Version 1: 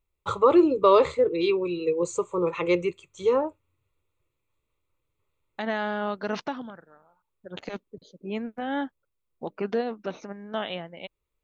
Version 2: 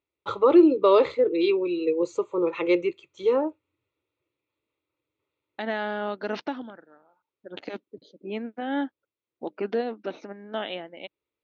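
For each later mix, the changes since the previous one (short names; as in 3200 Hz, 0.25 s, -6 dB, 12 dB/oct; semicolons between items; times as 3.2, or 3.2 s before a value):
master: add speaker cabinet 160–5100 Hz, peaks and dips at 170 Hz -8 dB, 310 Hz +6 dB, 1100 Hz -5 dB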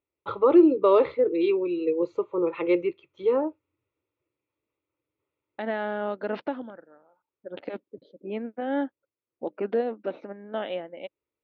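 second voice: add bell 540 Hz +7 dB 0.31 oct; master: add air absorption 330 m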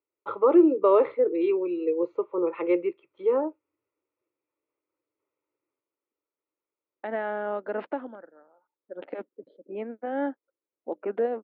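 second voice: entry +1.45 s; master: add three-band isolator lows -16 dB, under 230 Hz, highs -20 dB, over 2500 Hz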